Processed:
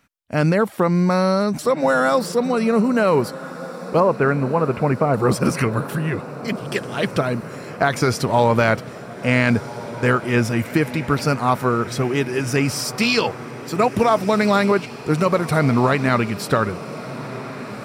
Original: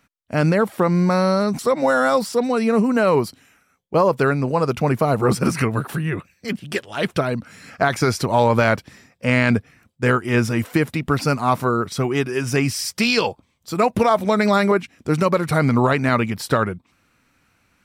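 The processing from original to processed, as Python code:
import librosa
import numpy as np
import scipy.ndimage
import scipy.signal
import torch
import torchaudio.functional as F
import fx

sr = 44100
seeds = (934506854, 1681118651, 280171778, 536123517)

p1 = fx.steep_lowpass(x, sr, hz=2600.0, slope=36, at=(4.0, 5.14))
y = p1 + fx.echo_diffused(p1, sr, ms=1552, feedback_pct=68, wet_db=-15.0, dry=0)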